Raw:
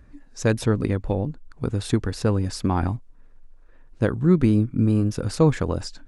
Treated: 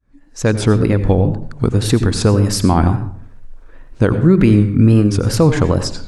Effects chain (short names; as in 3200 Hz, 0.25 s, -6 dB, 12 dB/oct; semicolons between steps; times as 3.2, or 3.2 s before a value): opening faded in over 0.83 s; 2.04–2.77 high shelf 8000 Hz +7 dB; in parallel at 0 dB: compressor, threshold -27 dBFS, peak gain reduction 14 dB; 4.35–5.07 on the sum: bell 2100 Hz +7 dB 1.2 oct; on a send at -11 dB: reverb RT60 0.55 s, pre-delay 79 ms; on the sum: wow and flutter 87 cents; maximiser +7.5 dB; gain -1 dB